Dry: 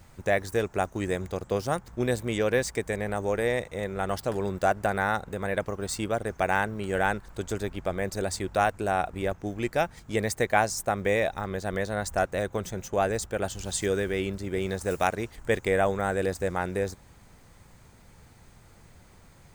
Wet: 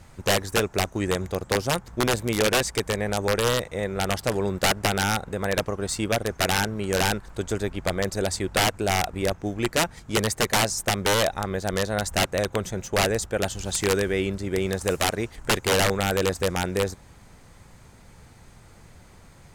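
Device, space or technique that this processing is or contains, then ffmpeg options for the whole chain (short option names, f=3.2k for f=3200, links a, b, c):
overflowing digital effects unit: -af "aeval=exprs='(mod(7.94*val(0)+1,2)-1)/7.94':c=same,lowpass=13k,volume=4dB"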